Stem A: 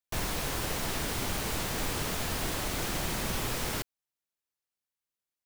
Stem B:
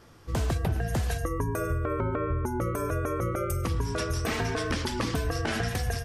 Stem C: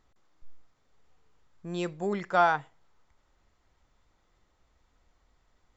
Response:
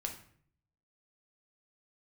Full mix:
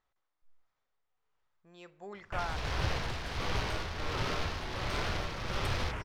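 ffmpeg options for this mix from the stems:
-filter_complex "[0:a]afwtdn=0.00891,acontrast=36,adelay=2200,volume=-5dB,asplit=2[a][b];[b]volume=-12.5dB[c];[1:a]adelay=2150,volume=-7dB[d];[2:a]lowshelf=f=230:g=-10.5,volume=-9.5dB,asplit=2[e][f];[f]volume=-11dB[g];[3:a]atrim=start_sample=2205[h];[c][g]amix=inputs=2:normalize=0[i];[i][h]afir=irnorm=-1:irlink=0[j];[a][d][e][j]amix=inputs=4:normalize=0,equalizer=f=260:w=0.76:g=-7,adynamicsmooth=sensitivity=8:basefreq=5.6k,tremolo=f=1.4:d=0.52"

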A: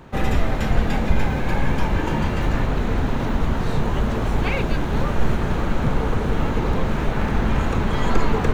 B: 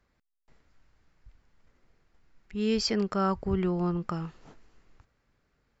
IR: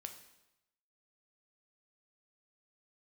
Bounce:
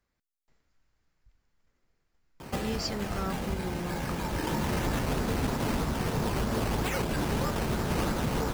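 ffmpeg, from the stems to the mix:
-filter_complex "[0:a]highpass=f=97:p=1,acrusher=samples=10:mix=1:aa=0.000001:lfo=1:lforange=6:lforate=3.1,adelay=2400,volume=0dB,asplit=2[a][b];[b]volume=-8.5dB[c];[1:a]highshelf=f=4.8k:g=8,volume=-8.5dB,asplit=2[d][e];[e]apad=whole_len=482409[f];[a][f]sidechaincompress=threshold=-54dB:ratio=8:attack=16:release=640[g];[2:a]atrim=start_sample=2205[h];[c][h]afir=irnorm=-1:irlink=0[i];[g][d][i]amix=inputs=3:normalize=0,alimiter=limit=-20dB:level=0:latency=1:release=364"

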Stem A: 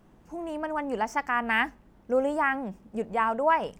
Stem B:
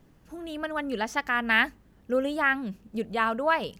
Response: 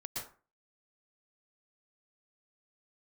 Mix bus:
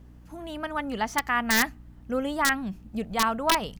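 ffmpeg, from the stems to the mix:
-filter_complex "[0:a]asubboost=boost=12:cutoff=74,aeval=exprs='val(0)+0.01*(sin(2*PI*60*n/s)+sin(2*PI*2*60*n/s)/2+sin(2*PI*3*60*n/s)/3+sin(2*PI*4*60*n/s)/4+sin(2*PI*5*60*n/s)/5)':c=same,volume=-8dB[a];[1:a]adelay=0.8,volume=0dB[b];[a][b]amix=inputs=2:normalize=0,aeval=exprs='(mod(4.22*val(0)+1,2)-1)/4.22':c=same"

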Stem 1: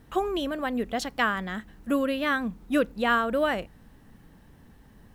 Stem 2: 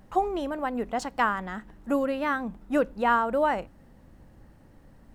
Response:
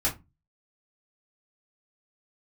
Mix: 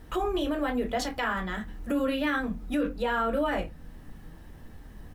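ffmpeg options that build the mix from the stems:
-filter_complex "[0:a]volume=1.5dB,asplit=2[a][b];[b]volume=-12.5dB[c];[1:a]adelay=2.3,volume=-8dB,asplit=2[d][e];[e]apad=whole_len=227013[f];[a][f]sidechaincompress=threshold=-39dB:ratio=8:attack=16:release=532[g];[2:a]atrim=start_sample=2205[h];[c][h]afir=irnorm=-1:irlink=0[i];[g][d][i]amix=inputs=3:normalize=0,alimiter=limit=-19.5dB:level=0:latency=1:release=25"

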